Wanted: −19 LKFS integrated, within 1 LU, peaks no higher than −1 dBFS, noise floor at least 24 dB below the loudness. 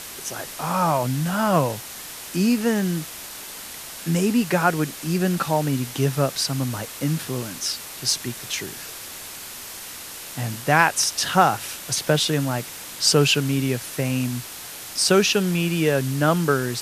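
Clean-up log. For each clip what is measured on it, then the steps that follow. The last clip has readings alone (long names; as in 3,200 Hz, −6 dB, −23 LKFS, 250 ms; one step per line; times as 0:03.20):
background noise floor −37 dBFS; target noise floor −46 dBFS; integrated loudness −22.0 LKFS; sample peak −2.0 dBFS; target loudness −19.0 LKFS
→ broadband denoise 9 dB, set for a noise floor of −37 dBFS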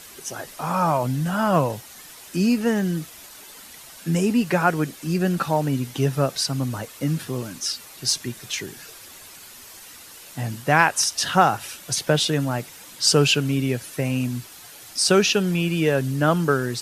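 background noise floor −44 dBFS; target noise floor −46 dBFS
→ broadband denoise 6 dB, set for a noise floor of −44 dBFS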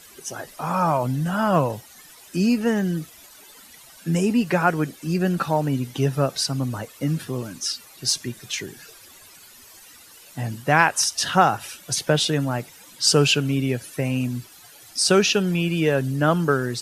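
background noise floor −48 dBFS; integrated loudness −22.5 LKFS; sample peak −1.5 dBFS; target loudness −19.0 LKFS
→ level +3.5 dB
brickwall limiter −1 dBFS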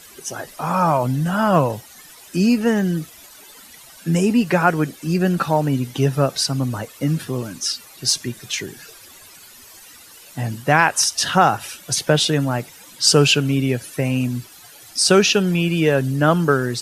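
integrated loudness −19.0 LKFS; sample peak −1.0 dBFS; background noise floor −44 dBFS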